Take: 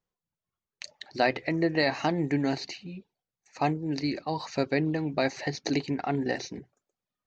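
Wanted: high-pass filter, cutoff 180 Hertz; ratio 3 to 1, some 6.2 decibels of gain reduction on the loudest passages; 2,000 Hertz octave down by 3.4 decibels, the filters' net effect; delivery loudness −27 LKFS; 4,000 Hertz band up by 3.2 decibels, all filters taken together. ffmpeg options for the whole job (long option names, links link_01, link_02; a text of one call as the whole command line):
ffmpeg -i in.wav -af "highpass=180,equalizer=frequency=2000:width_type=o:gain=-5,equalizer=frequency=4000:width_type=o:gain=4.5,acompressor=threshold=-29dB:ratio=3,volume=7dB" out.wav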